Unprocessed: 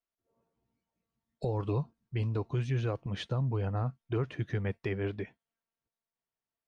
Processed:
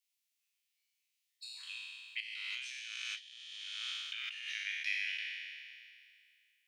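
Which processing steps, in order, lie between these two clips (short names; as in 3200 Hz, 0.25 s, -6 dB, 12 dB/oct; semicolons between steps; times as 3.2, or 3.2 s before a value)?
spectral trails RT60 2.29 s; steep high-pass 2200 Hz 36 dB/oct; 2.2–4.48 negative-ratio compressor -53 dBFS, ratio -1; gain +7.5 dB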